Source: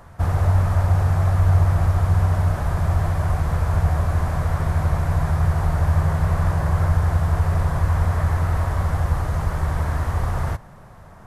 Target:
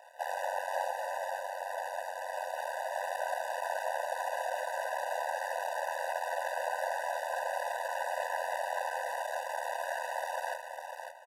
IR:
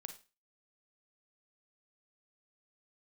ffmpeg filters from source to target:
-filter_complex "[0:a]asettb=1/sr,asplit=3[a][b][c];[a]atrim=end=0.864[d];[b]atrim=start=0.86:end=2.94,asetpts=PTS-STARTPTS,afade=t=in:d=0.004:c=qsin,afade=t=out:st=2.076:d=0.004:c=qsin,acompressor=threshold=-17dB:ratio=6[e];[c]atrim=start=2.936[f];[d][e]acrossfade=d=0.004:c1=hsin:c2=qsin[g];[g][f]acrossfade=d=0.004:c1=qsin:c2=hsin,aeval=exprs='max(val(0),0)':c=same,aecho=1:1:551:0.473,afftfilt=real='re*eq(mod(floor(b*sr/1024/500),2),1)':imag='im*eq(mod(floor(b*sr/1024/500),2),1)':win_size=1024:overlap=0.75,volume=1.5dB"

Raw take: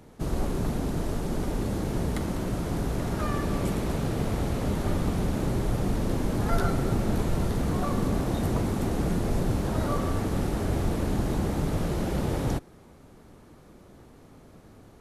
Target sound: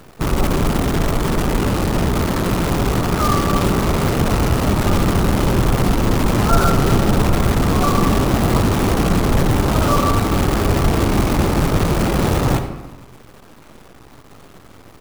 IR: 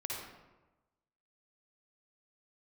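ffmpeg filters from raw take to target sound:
-filter_complex "[0:a]firequalizer=gain_entry='entry(650,0);entry(1300,6);entry(2100,-18);entry(6400,-7)':delay=0.05:min_phase=1,acrusher=bits=6:dc=4:mix=0:aa=0.000001,asplit=2[a][b];[1:a]atrim=start_sample=2205[c];[b][c]afir=irnorm=-1:irlink=0,volume=-5dB[d];[a][d]amix=inputs=2:normalize=0,volume=7dB"

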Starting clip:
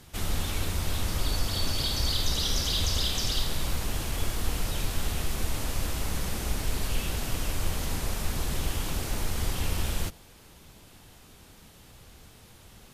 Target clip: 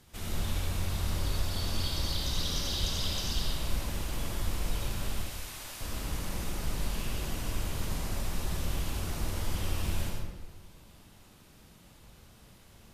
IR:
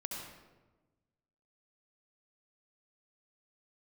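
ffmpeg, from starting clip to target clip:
-filter_complex "[0:a]asettb=1/sr,asplit=3[a][b][c];[a]atrim=end=5.144[d];[b]atrim=start=5.14:end=5.81,asetpts=PTS-STARTPTS,afade=t=in:d=0.004:c=qsin,afade=t=out:st=0.666:d=0.004:c=qsin,highpass=f=1.4k:p=1[e];[c]atrim=start=5.806[f];[d][e]acrossfade=d=0.004:c1=hsin:c2=qsin[g];[g][f]acrossfade=d=0.004:c1=qsin:c2=hsin[h];[1:a]atrim=start_sample=2205[i];[h][i]afir=irnorm=-1:irlink=0,volume=-4.5dB"

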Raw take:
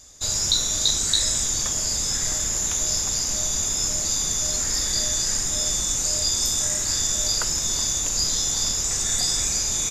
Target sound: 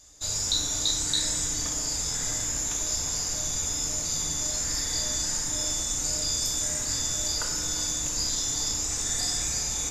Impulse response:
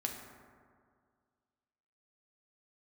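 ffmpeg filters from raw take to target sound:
-filter_complex "[0:a]bandreject=f=47.59:t=h:w=4,bandreject=f=95.18:t=h:w=4,bandreject=f=142.77:t=h:w=4,bandreject=f=190.36:t=h:w=4,bandreject=f=237.95:t=h:w=4,bandreject=f=285.54:t=h:w=4,bandreject=f=333.13:t=h:w=4,bandreject=f=380.72:t=h:w=4,bandreject=f=428.31:t=h:w=4,bandreject=f=475.9:t=h:w=4,bandreject=f=523.49:t=h:w=4[a];[1:a]atrim=start_sample=2205,asetrate=52920,aresample=44100[b];[a][b]afir=irnorm=-1:irlink=0,volume=-3.5dB"

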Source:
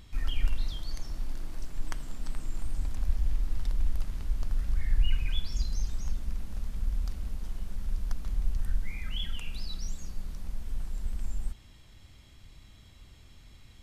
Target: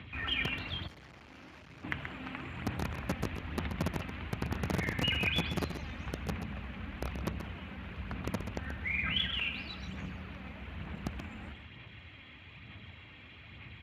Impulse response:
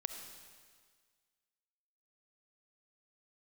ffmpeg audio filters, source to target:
-filter_complex "[0:a]firequalizer=gain_entry='entry(360,0);entry(2500,10);entry(5200,-21)':delay=0.05:min_phase=1,acrossover=split=270[a][b];[b]acompressor=threshold=-33dB:ratio=2[c];[a][c]amix=inputs=2:normalize=0,highpass=f=58:w=0.5412,highpass=f=58:w=1.3066,aphaser=in_gain=1:out_gain=1:delay=3.9:decay=0.4:speed=1.1:type=sinusoidal,acrossover=split=270[d][e];[d]aeval=exprs='(mod(29.9*val(0)+1,2)-1)/29.9':c=same[f];[f][e]amix=inputs=2:normalize=0,asettb=1/sr,asplit=3[g][h][i];[g]atrim=end=3.894[j];[h]atrim=start=3.89:end=4.49,asetpts=PTS-STARTPTS,afade=t=in:d=0.004:c=qsin,afade=t=out:st=0.596:d=0.004:c=qsin,aeval=exprs='val(0)+0.000282*(sin(2*PI*60*n/s)+sin(2*PI*2*60*n/s)/2+sin(2*PI*3*60*n/s)/3+sin(2*PI*4*60*n/s)/4+sin(2*PI*5*60*n/s)/5)':c=same[k];[i]atrim=start=4.486[l];[j][k]acrossfade=d=0.004:c1=hsin:c2=qsin[m];[m][l]acrossfade=d=0.004:c1=qsin:c2=hsin,asplit=2[n][o];[o]aecho=0:1:131:0.355[p];[n][p]amix=inputs=2:normalize=0,asplit=3[q][r][s];[q]afade=t=out:st=0.86:d=0.02[t];[r]aeval=exprs='(tanh(447*val(0)+0.6)-tanh(0.6))/447':c=same,afade=t=in:st=0.86:d=0.02,afade=t=out:st=1.83:d=0.02[u];[s]afade=t=in:st=1.83:d=0.02[v];[t][u][v]amix=inputs=3:normalize=0,volume=4dB" -ar 32000 -c:a libspeex -b:a 36k

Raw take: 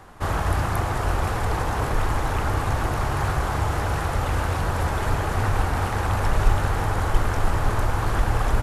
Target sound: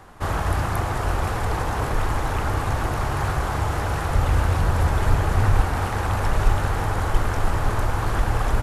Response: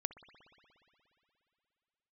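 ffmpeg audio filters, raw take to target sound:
-filter_complex "[0:a]asettb=1/sr,asplit=3[a][b][c];[a]atrim=end=4.104[d];[b]atrim=start=4.1:end=5.61,asetpts=PTS-STARTPTS,afade=t=in:d=0.004:c=qsin,afade=t=out:st=1.506:d=0.004:c=qsin,lowshelf=f=150:g=6.5[e];[c]atrim=start=5.606[f];[d][e]acrossfade=d=0.004:c1=hsin:c2=qsin[g];[g][f]acrossfade=d=0.004:c1=qsin:c2=hsin"

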